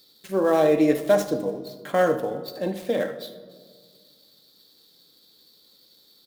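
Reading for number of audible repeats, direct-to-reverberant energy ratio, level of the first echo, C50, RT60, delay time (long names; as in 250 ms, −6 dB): 1, 8.5 dB, −17.0 dB, 11.5 dB, 1.8 s, 76 ms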